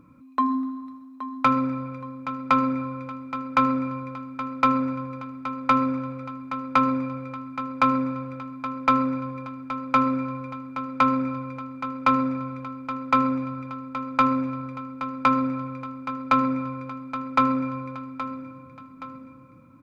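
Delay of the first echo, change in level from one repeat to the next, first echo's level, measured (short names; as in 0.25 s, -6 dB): 0.822 s, -7.0 dB, -12.0 dB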